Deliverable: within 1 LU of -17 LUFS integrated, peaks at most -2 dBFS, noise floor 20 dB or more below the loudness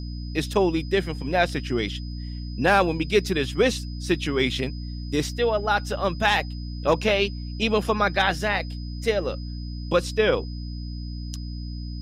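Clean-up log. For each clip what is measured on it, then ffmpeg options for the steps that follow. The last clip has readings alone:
hum 60 Hz; harmonics up to 300 Hz; hum level -30 dBFS; steady tone 5000 Hz; tone level -45 dBFS; loudness -25.0 LUFS; peak -8.0 dBFS; loudness target -17.0 LUFS
-> -af "bandreject=f=60:t=h:w=4,bandreject=f=120:t=h:w=4,bandreject=f=180:t=h:w=4,bandreject=f=240:t=h:w=4,bandreject=f=300:t=h:w=4"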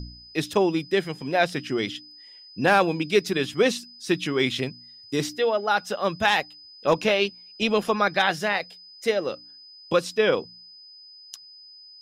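hum none; steady tone 5000 Hz; tone level -45 dBFS
-> -af "bandreject=f=5k:w=30"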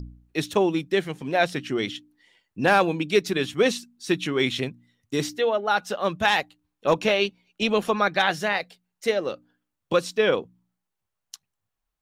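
steady tone none; loudness -24.5 LUFS; peak -8.5 dBFS; loudness target -17.0 LUFS
-> -af "volume=7.5dB,alimiter=limit=-2dB:level=0:latency=1"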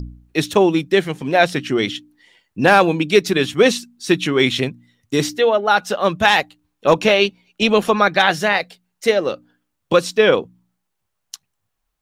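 loudness -17.0 LUFS; peak -2.0 dBFS; noise floor -75 dBFS

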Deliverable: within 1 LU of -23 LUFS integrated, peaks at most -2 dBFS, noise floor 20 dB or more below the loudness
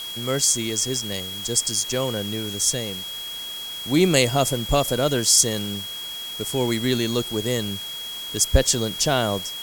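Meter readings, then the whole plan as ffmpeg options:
steady tone 3300 Hz; tone level -31 dBFS; noise floor -33 dBFS; noise floor target -42 dBFS; loudness -22.0 LUFS; peak -3.5 dBFS; loudness target -23.0 LUFS
-> -af "bandreject=f=3.3k:w=30"
-af "afftdn=nr=9:nf=-33"
-af "volume=-1dB"

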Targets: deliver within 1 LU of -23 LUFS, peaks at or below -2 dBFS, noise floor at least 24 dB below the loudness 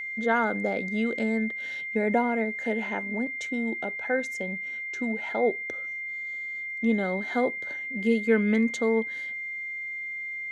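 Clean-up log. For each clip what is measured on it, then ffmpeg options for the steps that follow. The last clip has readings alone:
steady tone 2100 Hz; tone level -32 dBFS; loudness -28.0 LUFS; peak -10.5 dBFS; loudness target -23.0 LUFS
-> -af "bandreject=f=2.1k:w=30"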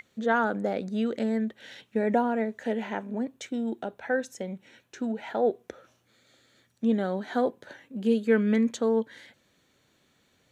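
steady tone none; loudness -28.5 LUFS; peak -11.5 dBFS; loudness target -23.0 LUFS
-> -af "volume=5.5dB"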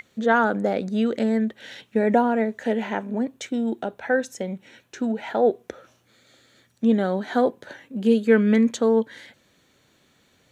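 loudness -23.0 LUFS; peak -6.0 dBFS; noise floor -63 dBFS

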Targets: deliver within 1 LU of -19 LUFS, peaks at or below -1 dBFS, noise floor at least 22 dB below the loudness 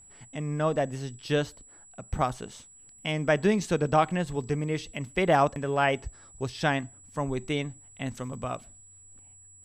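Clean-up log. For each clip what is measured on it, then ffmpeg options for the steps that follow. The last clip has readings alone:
steady tone 7800 Hz; tone level -51 dBFS; loudness -29.0 LUFS; peak -10.0 dBFS; loudness target -19.0 LUFS
-> -af "bandreject=f=7.8k:w=30"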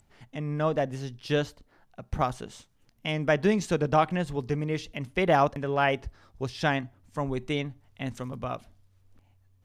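steady tone none; loudness -29.0 LUFS; peak -10.0 dBFS; loudness target -19.0 LUFS
-> -af "volume=10dB,alimiter=limit=-1dB:level=0:latency=1"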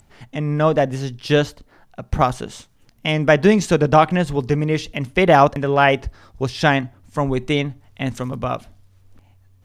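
loudness -19.0 LUFS; peak -1.0 dBFS; noise floor -55 dBFS

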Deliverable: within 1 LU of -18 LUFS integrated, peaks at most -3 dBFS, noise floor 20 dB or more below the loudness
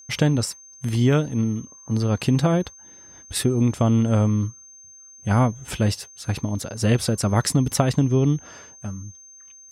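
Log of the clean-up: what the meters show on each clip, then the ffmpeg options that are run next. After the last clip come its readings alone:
steady tone 6300 Hz; tone level -44 dBFS; loudness -22.5 LUFS; peak -4.5 dBFS; loudness target -18.0 LUFS
-> -af "bandreject=f=6.3k:w=30"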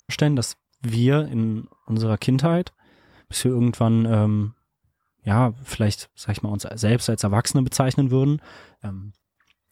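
steady tone none; loudness -22.5 LUFS; peak -4.5 dBFS; loudness target -18.0 LUFS
-> -af "volume=4.5dB,alimiter=limit=-3dB:level=0:latency=1"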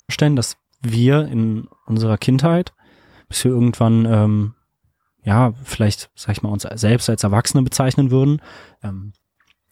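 loudness -18.0 LUFS; peak -3.0 dBFS; noise floor -74 dBFS

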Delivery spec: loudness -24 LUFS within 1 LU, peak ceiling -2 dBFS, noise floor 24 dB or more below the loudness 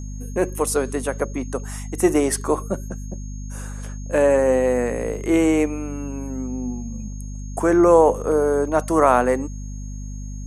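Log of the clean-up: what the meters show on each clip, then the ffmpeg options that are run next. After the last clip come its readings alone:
hum 50 Hz; harmonics up to 250 Hz; hum level -29 dBFS; steady tone 6500 Hz; tone level -45 dBFS; loudness -20.5 LUFS; peak -2.0 dBFS; loudness target -24.0 LUFS
-> -af "bandreject=f=50:t=h:w=6,bandreject=f=100:t=h:w=6,bandreject=f=150:t=h:w=6,bandreject=f=200:t=h:w=6,bandreject=f=250:t=h:w=6"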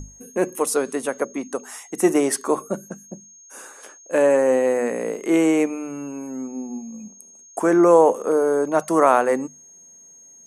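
hum none; steady tone 6500 Hz; tone level -45 dBFS
-> -af "bandreject=f=6.5k:w=30"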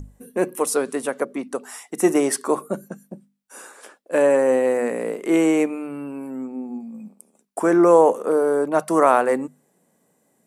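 steady tone none; loudness -20.5 LUFS; peak -2.0 dBFS; loudness target -24.0 LUFS
-> -af "volume=-3.5dB"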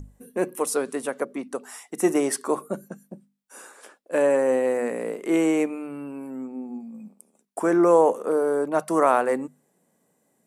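loudness -24.0 LUFS; peak -5.5 dBFS; noise floor -70 dBFS

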